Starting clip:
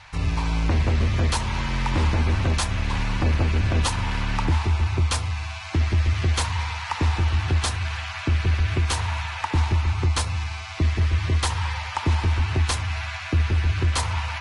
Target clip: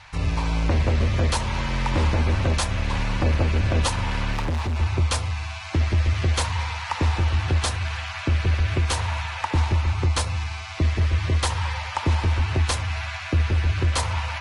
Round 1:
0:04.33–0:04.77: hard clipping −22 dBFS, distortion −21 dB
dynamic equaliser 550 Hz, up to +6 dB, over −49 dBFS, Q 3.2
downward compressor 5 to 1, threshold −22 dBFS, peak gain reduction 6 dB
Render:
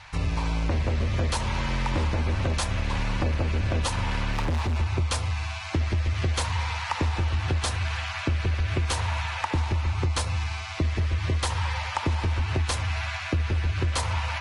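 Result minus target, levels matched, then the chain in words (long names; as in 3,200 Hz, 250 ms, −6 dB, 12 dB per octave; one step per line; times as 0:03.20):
downward compressor: peak gain reduction +6 dB
0:04.33–0:04.77: hard clipping −22 dBFS, distortion −21 dB
dynamic equaliser 550 Hz, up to +6 dB, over −49 dBFS, Q 3.2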